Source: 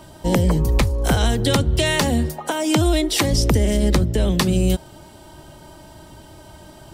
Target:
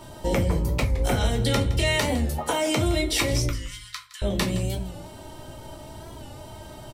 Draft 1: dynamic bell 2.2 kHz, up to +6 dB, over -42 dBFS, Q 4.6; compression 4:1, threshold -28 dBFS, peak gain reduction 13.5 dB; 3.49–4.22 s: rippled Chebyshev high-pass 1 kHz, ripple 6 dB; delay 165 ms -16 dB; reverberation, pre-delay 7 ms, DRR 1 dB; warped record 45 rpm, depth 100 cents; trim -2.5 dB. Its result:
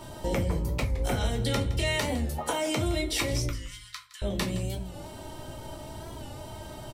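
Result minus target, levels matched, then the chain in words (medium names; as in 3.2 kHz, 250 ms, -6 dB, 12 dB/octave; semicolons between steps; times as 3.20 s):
compression: peak gain reduction +5 dB
dynamic bell 2.2 kHz, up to +6 dB, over -42 dBFS, Q 4.6; compression 4:1, threshold -21.5 dBFS, peak gain reduction 8.5 dB; 3.49–4.22 s: rippled Chebyshev high-pass 1 kHz, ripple 6 dB; delay 165 ms -16 dB; reverberation, pre-delay 7 ms, DRR 1 dB; warped record 45 rpm, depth 100 cents; trim -2.5 dB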